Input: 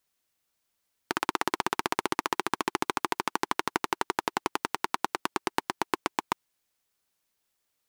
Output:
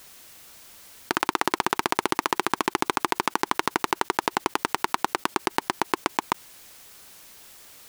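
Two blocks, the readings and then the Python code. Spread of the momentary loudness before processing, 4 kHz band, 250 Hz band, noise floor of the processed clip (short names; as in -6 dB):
3 LU, +4.5 dB, +4.5 dB, -52 dBFS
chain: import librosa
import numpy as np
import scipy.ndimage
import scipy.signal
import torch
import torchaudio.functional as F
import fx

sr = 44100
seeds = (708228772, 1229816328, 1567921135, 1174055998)

y = fx.env_flatten(x, sr, amount_pct=50)
y = F.gain(torch.from_numpy(y), 3.5).numpy()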